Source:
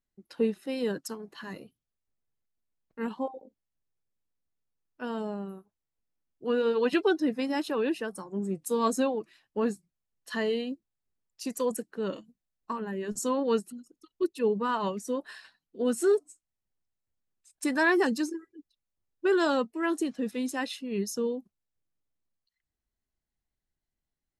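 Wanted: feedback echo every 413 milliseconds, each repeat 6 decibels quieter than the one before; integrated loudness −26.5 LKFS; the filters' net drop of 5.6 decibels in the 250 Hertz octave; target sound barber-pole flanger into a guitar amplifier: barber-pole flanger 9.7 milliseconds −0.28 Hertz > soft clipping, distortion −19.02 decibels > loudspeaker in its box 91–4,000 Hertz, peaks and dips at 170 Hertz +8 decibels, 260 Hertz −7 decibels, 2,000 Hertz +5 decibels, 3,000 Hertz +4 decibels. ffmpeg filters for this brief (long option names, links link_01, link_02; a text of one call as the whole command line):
ffmpeg -i in.wav -filter_complex "[0:a]equalizer=frequency=250:width_type=o:gain=-5,aecho=1:1:413|826|1239|1652|2065|2478:0.501|0.251|0.125|0.0626|0.0313|0.0157,asplit=2[link_01][link_02];[link_02]adelay=9.7,afreqshift=-0.28[link_03];[link_01][link_03]amix=inputs=2:normalize=1,asoftclip=threshold=-22.5dB,highpass=91,equalizer=frequency=170:width_type=q:width=4:gain=8,equalizer=frequency=260:width_type=q:width=4:gain=-7,equalizer=frequency=2000:width_type=q:width=4:gain=5,equalizer=frequency=3000:width_type=q:width=4:gain=4,lowpass=frequency=4000:width=0.5412,lowpass=frequency=4000:width=1.3066,volume=9.5dB" out.wav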